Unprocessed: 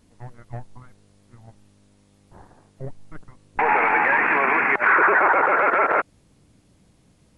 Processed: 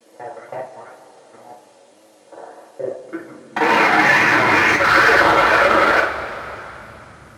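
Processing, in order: local time reversal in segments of 40 ms; in parallel at +1.5 dB: limiter -19.5 dBFS, peak gain reduction 11.5 dB; on the sum: one-sided clip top -15.5 dBFS, bottom -11 dBFS; wow and flutter 140 cents; high-pass sweep 510 Hz -> 62 Hz, 2.78–4.91; two-slope reverb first 0.25 s, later 3.3 s, from -19 dB, DRR -4.5 dB; gain -2 dB

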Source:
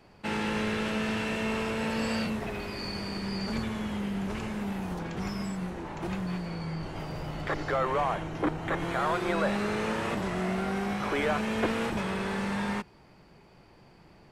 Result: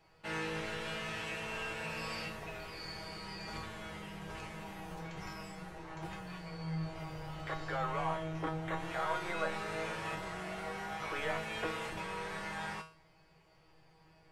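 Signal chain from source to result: bell 240 Hz -10.5 dB 1.1 oct; resonator 160 Hz, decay 0.38 s, harmonics all, mix 90%; gain +5.5 dB

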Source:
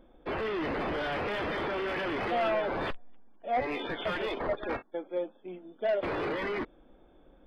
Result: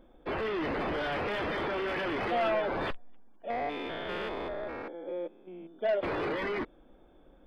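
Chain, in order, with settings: 3.5–5.79 stepped spectrum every 0.2 s

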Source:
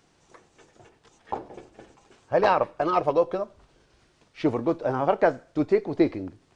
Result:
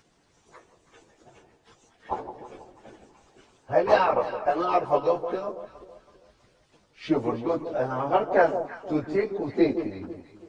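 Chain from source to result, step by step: plain phase-vocoder stretch 1.6×; harmonic-percussive split percussive +7 dB; echo with dull and thin repeats by turns 0.163 s, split 920 Hz, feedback 57%, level -9 dB; gain -3 dB

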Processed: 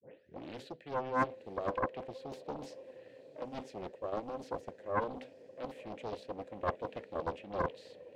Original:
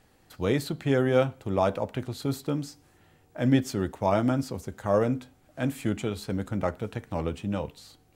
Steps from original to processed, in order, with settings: tape start at the beginning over 0.68 s; HPF 73 Hz 24 dB/oct; bell 1400 Hz -7 dB 1.4 oct; reverse; compressor 16:1, threshold -36 dBFS, peak gain reduction 20.5 dB; reverse; vowel filter e; on a send: diffused feedback echo 0.92 s, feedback 53%, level -16 dB; on the sum: Doppler distortion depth 0.87 ms; gain +13.5 dB

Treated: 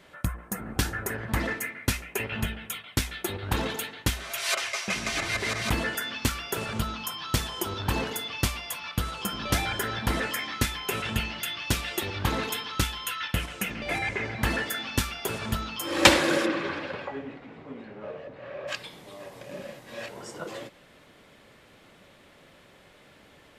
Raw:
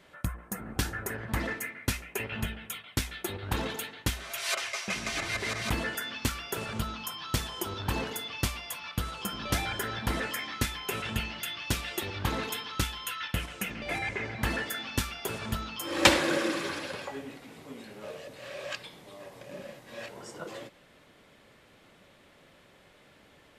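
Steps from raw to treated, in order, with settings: 16.45–18.67 LPF 3100 Hz -> 1500 Hz 12 dB/oct; gain +3.5 dB

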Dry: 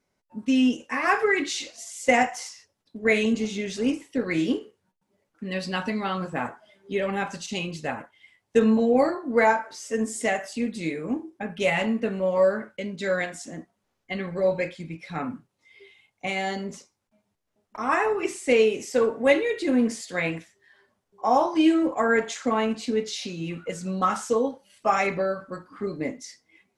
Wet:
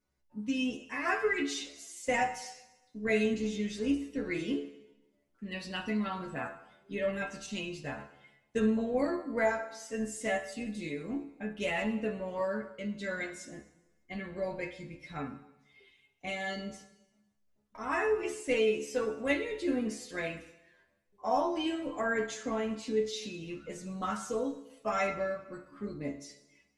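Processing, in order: low shelf 120 Hz +11 dB; notch 800 Hz, Q 12; metallic resonator 69 Hz, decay 0.33 s, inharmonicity 0.002; on a send: reverb RT60 1.0 s, pre-delay 8 ms, DRR 10.5 dB

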